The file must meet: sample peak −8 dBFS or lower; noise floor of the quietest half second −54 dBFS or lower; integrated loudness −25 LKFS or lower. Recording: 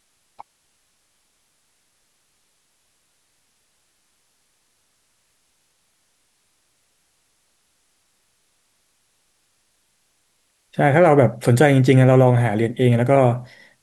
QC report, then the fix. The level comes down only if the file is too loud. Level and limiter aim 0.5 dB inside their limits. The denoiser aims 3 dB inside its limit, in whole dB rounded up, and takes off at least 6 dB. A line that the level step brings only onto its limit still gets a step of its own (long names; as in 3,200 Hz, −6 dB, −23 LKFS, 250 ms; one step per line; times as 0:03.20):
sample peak −2.5 dBFS: out of spec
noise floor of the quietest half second −66 dBFS: in spec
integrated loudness −16.0 LKFS: out of spec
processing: level −9.5 dB